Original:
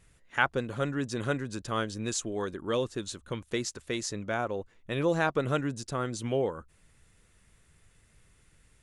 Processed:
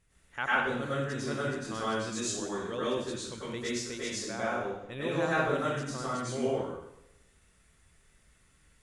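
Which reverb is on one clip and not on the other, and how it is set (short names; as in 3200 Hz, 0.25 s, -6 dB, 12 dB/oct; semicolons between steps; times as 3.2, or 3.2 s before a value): plate-style reverb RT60 0.81 s, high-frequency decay 0.95×, pre-delay 85 ms, DRR -9 dB; gain -9.5 dB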